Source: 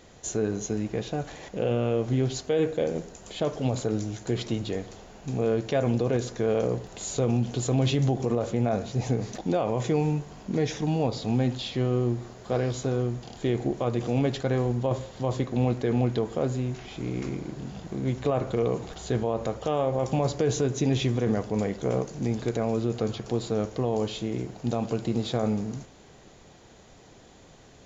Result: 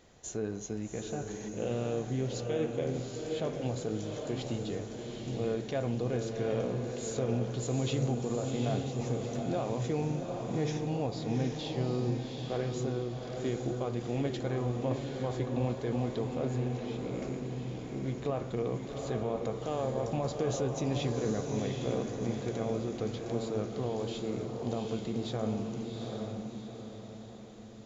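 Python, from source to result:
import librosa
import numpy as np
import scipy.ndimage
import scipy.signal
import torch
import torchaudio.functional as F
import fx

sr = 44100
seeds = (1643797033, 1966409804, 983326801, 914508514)

y = fx.echo_diffused(x, sr, ms=779, feedback_pct=46, wet_db=-3.5)
y = y * 10.0 ** (-8.0 / 20.0)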